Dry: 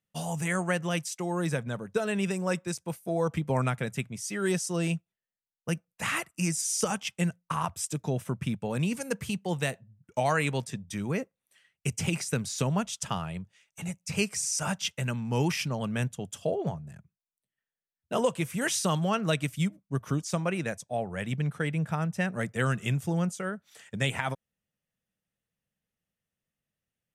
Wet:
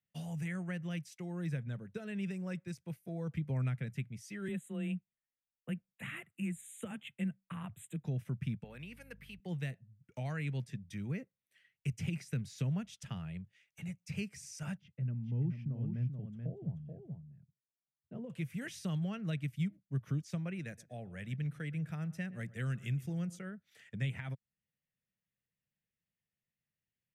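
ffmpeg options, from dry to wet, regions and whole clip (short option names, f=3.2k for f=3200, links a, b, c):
-filter_complex "[0:a]asettb=1/sr,asplit=3[a][b][c];[a]atrim=end=4.484[d];[b]atrim=start=4.48:end=8.05,asetpts=PTS-STARTPTS,afade=t=in:d=0.004:c=qsin,afade=t=out:st=3.566:d=0.004:c=qsin,asuperstop=centerf=5200:order=8:qfactor=1.6,afreqshift=17[e];[c]atrim=start=8.046[f];[d][e]acrossfade=d=0.004:c1=hsin:c2=qsin[g];[g][f]acrossfade=d=0.004:c1=qsin:c2=hsin,asettb=1/sr,asplit=3[h][i][j];[h]atrim=end=8.644[k];[i]atrim=start=8.64:end=9.4,asetpts=PTS-STARTPTS,afade=t=in:d=0.004:c=qsin,afade=t=out:st=0.756:d=0.004:c=qsin,highpass=f=950:p=1,equalizer=f=6.7k:w=1.3:g=-12.5,aeval=exprs='val(0)+0.00251*(sin(2*PI*50*n/s)+sin(2*PI*2*50*n/s)/2+sin(2*PI*3*50*n/s)/3+sin(2*PI*4*50*n/s)/4+sin(2*PI*5*50*n/s)/5)':c=same[l];[j]atrim=start=9.396[m];[k][l]acrossfade=d=0.004:c1=hsin:c2=qsin[n];[n][m]acrossfade=d=0.004:c1=qsin:c2=hsin,asettb=1/sr,asplit=3[o][p][q];[o]atrim=end=14.774[r];[p]atrim=start=14.77:end=18.3,asetpts=PTS-STARTPTS,afade=t=in:d=0.004:c=qsin,afade=t=out:st=3.526:d=0.004:c=qsin,bandpass=f=150:t=q:w=0.73,aecho=1:1:433:0.473,atrim=end_sample=155673[s];[q]atrim=start=18.296[t];[r][s]acrossfade=d=0.004:c1=hsin:c2=qsin[u];[u][t]acrossfade=d=0.004:c1=qsin:c2=hsin,asettb=1/sr,asplit=3[v][w][x];[v]atrim=end=20.594[y];[w]atrim=start=20.59:end=23.39,asetpts=PTS-STARTPTS,afade=t=in:d=0.004:c=qsin,afade=t=out:st=2.796:d=0.004:c=qsin,bass=f=250:g=-3,treble=f=4k:g=6,bandreject=f=870:w=22,asplit=2[z][aa];[aa]adelay=119,lowpass=f=2k:p=1,volume=-20dB,asplit=2[ab][ac];[ac]adelay=119,lowpass=f=2k:p=1,volume=0.33,asplit=2[ad][ae];[ae]adelay=119,lowpass=f=2k:p=1,volume=0.33[af];[z][ab][ad][af]amix=inputs=4:normalize=0,atrim=end_sample=123480[ag];[x]atrim=start=23.386[ah];[y][ag]acrossfade=d=0.004:c1=hsin:c2=qsin[ai];[ai][ah]acrossfade=d=0.004:c1=qsin:c2=hsin,equalizer=f=125:t=o:w=1:g=5,equalizer=f=1k:t=o:w=1:g=-8,equalizer=f=2k:t=o:w=1:g=7,equalizer=f=8k:t=o:w=1:g=-7,acrossover=split=250[aj][ak];[ak]acompressor=threshold=-51dB:ratio=1.5[al];[aj][al]amix=inputs=2:normalize=0,volume=-8dB"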